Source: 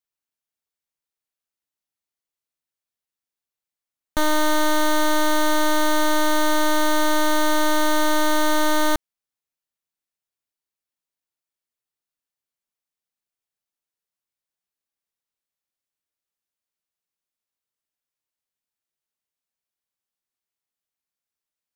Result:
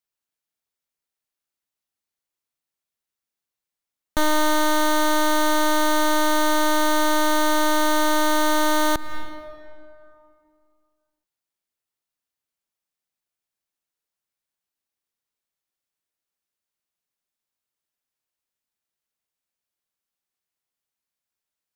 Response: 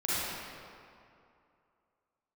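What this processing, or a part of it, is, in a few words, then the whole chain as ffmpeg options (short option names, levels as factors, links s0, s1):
ducked reverb: -filter_complex "[0:a]asplit=3[s0][s1][s2];[1:a]atrim=start_sample=2205[s3];[s1][s3]afir=irnorm=-1:irlink=0[s4];[s2]apad=whole_len=959248[s5];[s4][s5]sidechaincompress=threshold=0.0224:ratio=8:attack=16:release=215,volume=0.168[s6];[s0][s6]amix=inputs=2:normalize=0"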